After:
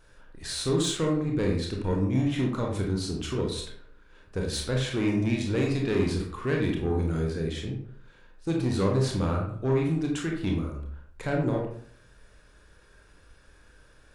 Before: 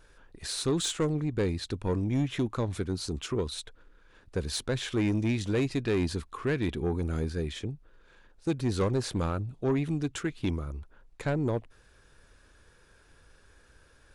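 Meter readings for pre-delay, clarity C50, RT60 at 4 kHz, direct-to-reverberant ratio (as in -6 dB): 24 ms, 4.0 dB, 0.35 s, -0.5 dB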